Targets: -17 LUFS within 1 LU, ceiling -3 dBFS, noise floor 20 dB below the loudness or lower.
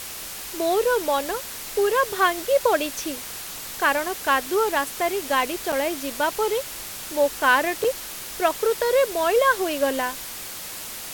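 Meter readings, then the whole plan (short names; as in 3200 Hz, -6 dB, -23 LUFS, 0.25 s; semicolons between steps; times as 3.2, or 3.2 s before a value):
dropouts 2; longest dropout 5.4 ms; noise floor -35 dBFS; noise floor target -44 dBFS; loudness -23.5 LUFS; peak -6.5 dBFS; loudness target -17.0 LUFS
-> interpolate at 5.72/7.84, 5.4 ms; noise print and reduce 9 dB; gain +6.5 dB; limiter -3 dBFS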